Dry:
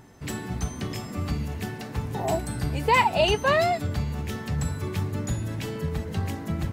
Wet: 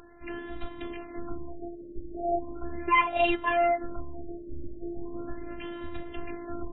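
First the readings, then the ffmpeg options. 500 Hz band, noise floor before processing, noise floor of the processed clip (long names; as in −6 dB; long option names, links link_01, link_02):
−4.0 dB, −38 dBFS, −44 dBFS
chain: -af "afftfilt=real='hypot(re,im)*cos(PI*b)':imag='0':win_size=512:overlap=0.75,acompressor=mode=upward:threshold=-44dB:ratio=2.5,afftfilt=real='re*lt(b*sr/1024,610*pow(4100/610,0.5+0.5*sin(2*PI*0.38*pts/sr)))':imag='im*lt(b*sr/1024,610*pow(4100/610,0.5+0.5*sin(2*PI*0.38*pts/sr)))':win_size=1024:overlap=0.75"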